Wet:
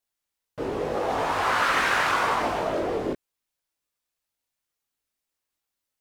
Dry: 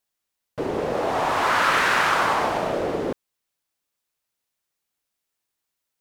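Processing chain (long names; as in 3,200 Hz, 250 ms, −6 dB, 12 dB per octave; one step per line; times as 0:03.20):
multi-voice chorus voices 6, 0.75 Hz, delay 20 ms, depth 2.2 ms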